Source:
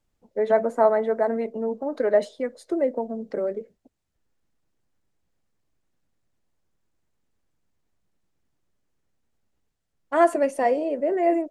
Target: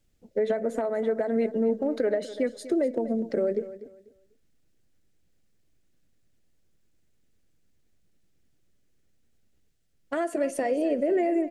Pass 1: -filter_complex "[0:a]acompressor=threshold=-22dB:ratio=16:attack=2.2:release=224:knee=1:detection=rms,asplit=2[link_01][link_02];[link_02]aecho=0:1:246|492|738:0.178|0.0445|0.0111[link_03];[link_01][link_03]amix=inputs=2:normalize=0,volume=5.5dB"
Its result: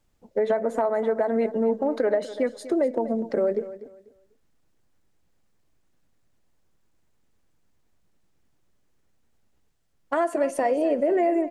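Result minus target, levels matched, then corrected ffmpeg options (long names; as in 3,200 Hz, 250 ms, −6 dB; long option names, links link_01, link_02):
1,000 Hz band +4.5 dB
-filter_complex "[0:a]acompressor=threshold=-22dB:ratio=16:attack=2.2:release=224:knee=1:detection=rms,equalizer=frequency=970:width=1.5:gain=-12,asplit=2[link_01][link_02];[link_02]aecho=0:1:246|492|738:0.178|0.0445|0.0111[link_03];[link_01][link_03]amix=inputs=2:normalize=0,volume=5.5dB"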